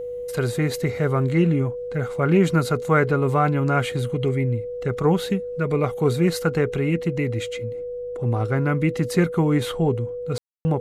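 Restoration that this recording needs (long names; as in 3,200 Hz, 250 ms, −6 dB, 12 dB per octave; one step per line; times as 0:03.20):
hum removal 52.3 Hz, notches 3
notch filter 490 Hz, Q 30
ambience match 0:10.38–0:10.65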